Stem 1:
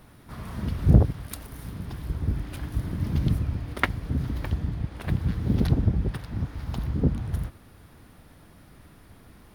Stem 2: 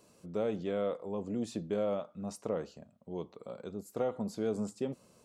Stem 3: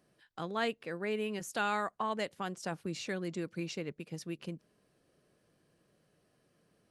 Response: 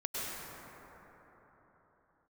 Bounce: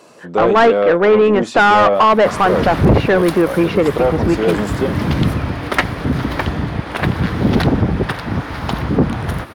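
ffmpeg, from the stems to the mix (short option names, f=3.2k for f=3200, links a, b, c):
-filter_complex "[0:a]adelay=1950,volume=1dB[a];[1:a]volume=1dB[b];[2:a]lowpass=1.4k,dynaudnorm=f=120:g=3:m=11dB,volume=0.5dB[c];[a][b][c]amix=inputs=3:normalize=0,asplit=2[d][e];[e]highpass=f=720:p=1,volume=29dB,asoftclip=type=tanh:threshold=-0.5dB[f];[d][f]amix=inputs=2:normalize=0,lowpass=f=2.1k:p=1,volume=-6dB"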